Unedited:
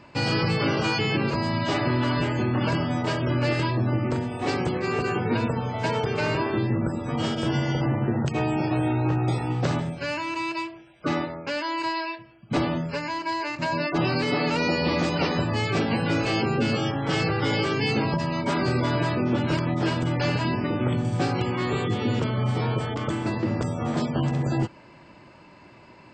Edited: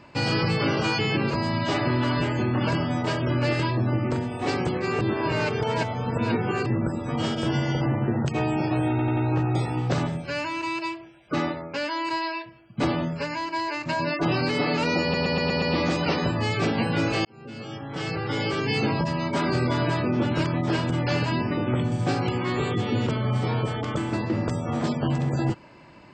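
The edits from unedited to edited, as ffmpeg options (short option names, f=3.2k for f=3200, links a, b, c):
-filter_complex "[0:a]asplit=12[a][b][c][d][e][f][g][h][i][j][k][l];[a]atrim=end=5.012[m];[b]atrim=start=5.008:end=6.662,asetpts=PTS-STARTPTS,areverse[n];[c]atrim=start=6.658:end=8.992[o];[d]atrim=start=8.898:end=8.992[p];[e]atrim=start=8.898:end=8.992[q];[f]atrim=start=8.898:end=14.872[r];[g]atrim=start=14.748:end=14.872[s];[h]atrim=start=14.748:end=14.872[t];[i]atrim=start=14.748:end=14.872[u];[j]atrim=start=14.748:end=14.872[v];[k]atrim=start=14.748:end=16.38,asetpts=PTS-STARTPTS,afade=t=out:st=1.628:d=0.004:c=hsin[w];[l]atrim=start=16.38,asetpts=PTS-STARTPTS,afade=t=in:d=1.57[x];[m][n]acrossfade=d=0.004:c1=hsin:c2=hsin[y];[y][o]acrossfade=d=0.004:c1=hsin:c2=hsin[z];[z][p]acrossfade=d=0.004:c1=hsin:c2=hsin[aa];[aa][q]acrossfade=d=0.004:c1=hsin:c2=hsin[ab];[ab][r]acrossfade=d=0.004:c1=hsin:c2=hsin[ac];[ac][s]acrossfade=d=0.004:c1=hsin:c2=hsin[ad];[ad][t]acrossfade=d=0.004:c1=hsin:c2=hsin[ae];[ae][u]acrossfade=d=0.004:c1=hsin:c2=hsin[af];[af][v]acrossfade=d=0.004:c1=hsin:c2=hsin[ag];[w][x]concat=n=2:v=0:a=1[ah];[ag][ah]acrossfade=d=0.004:c1=hsin:c2=hsin"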